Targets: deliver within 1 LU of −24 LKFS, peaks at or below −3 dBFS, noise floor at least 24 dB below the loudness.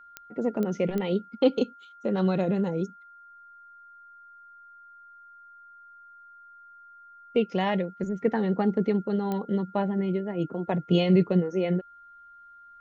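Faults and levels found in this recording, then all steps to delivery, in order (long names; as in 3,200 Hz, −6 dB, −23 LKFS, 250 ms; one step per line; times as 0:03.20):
number of clicks 4; interfering tone 1,400 Hz; level of the tone −48 dBFS; integrated loudness −27.0 LKFS; sample peak −9.0 dBFS; target loudness −24.0 LKFS
→ click removal
notch filter 1,400 Hz, Q 30
level +3 dB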